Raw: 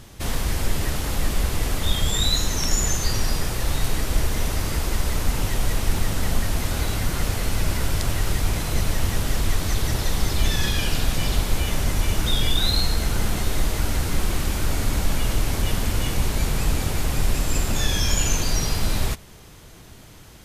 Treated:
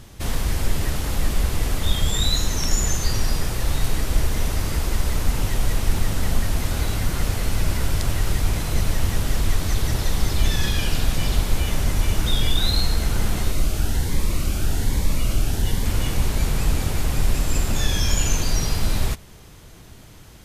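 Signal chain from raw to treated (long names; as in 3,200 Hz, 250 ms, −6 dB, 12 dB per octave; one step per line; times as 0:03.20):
low-shelf EQ 180 Hz +3 dB
0:13.51–0:15.86: phaser whose notches keep moving one way rising 1.2 Hz
level −1 dB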